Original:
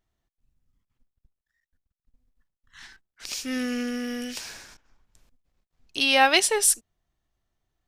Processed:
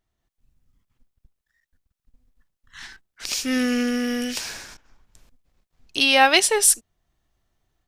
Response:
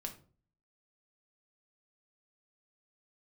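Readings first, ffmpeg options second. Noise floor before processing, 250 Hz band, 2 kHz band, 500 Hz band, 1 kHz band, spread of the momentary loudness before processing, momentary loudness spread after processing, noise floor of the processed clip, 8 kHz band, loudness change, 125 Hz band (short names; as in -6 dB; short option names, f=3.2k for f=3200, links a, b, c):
under -85 dBFS, +6.0 dB, +3.5 dB, +3.5 dB, +3.0 dB, 19 LU, 17 LU, -82 dBFS, +4.0 dB, +3.5 dB, n/a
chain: -af "dynaudnorm=f=170:g=3:m=6.5dB"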